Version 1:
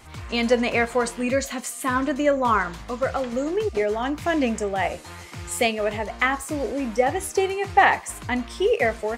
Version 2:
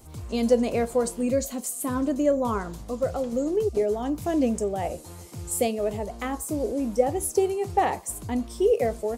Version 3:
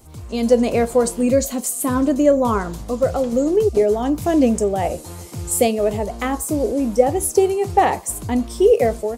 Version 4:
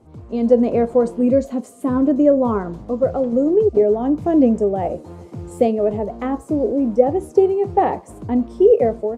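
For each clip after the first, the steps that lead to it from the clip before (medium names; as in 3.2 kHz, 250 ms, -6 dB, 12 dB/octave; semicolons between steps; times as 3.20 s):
FFT filter 490 Hz 0 dB, 1.9 kHz -17 dB, 12 kHz +5 dB
level rider gain up to 6 dB; trim +2 dB
band-pass filter 300 Hz, Q 0.55; trim +2 dB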